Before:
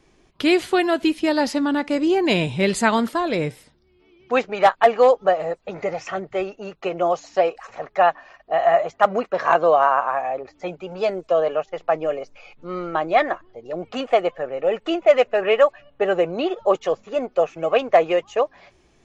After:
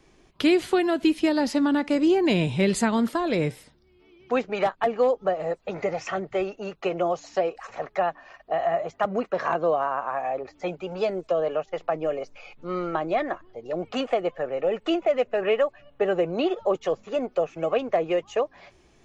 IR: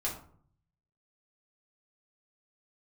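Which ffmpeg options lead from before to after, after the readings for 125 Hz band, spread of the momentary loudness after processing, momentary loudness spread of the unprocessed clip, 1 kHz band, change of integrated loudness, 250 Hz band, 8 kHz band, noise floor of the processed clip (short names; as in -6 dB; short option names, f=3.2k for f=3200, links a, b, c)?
0.0 dB, 9 LU, 13 LU, -8.0 dB, -5.0 dB, -1.0 dB, n/a, -59 dBFS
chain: -filter_complex "[0:a]acrossover=split=380[a][b];[b]acompressor=threshold=-25dB:ratio=4[c];[a][c]amix=inputs=2:normalize=0"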